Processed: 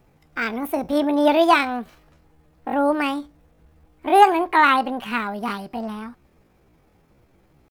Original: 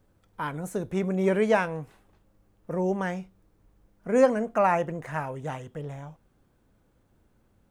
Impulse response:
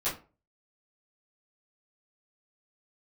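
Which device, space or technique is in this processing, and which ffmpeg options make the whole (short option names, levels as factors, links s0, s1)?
chipmunk voice: -af "asetrate=68011,aresample=44100,atempo=0.64842,volume=2.24"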